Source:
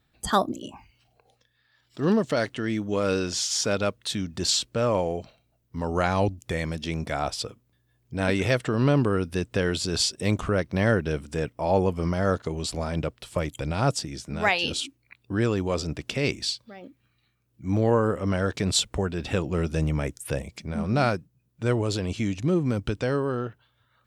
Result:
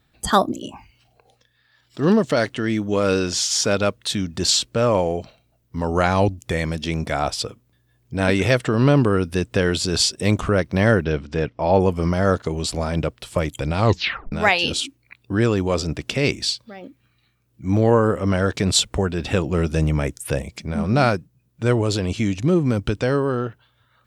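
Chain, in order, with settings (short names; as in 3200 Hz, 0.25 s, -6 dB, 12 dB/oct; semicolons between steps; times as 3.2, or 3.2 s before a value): 11.04–11.8 LPF 5200 Hz 24 dB/oct; 13.77 tape stop 0.55 s; gain +5.5 dB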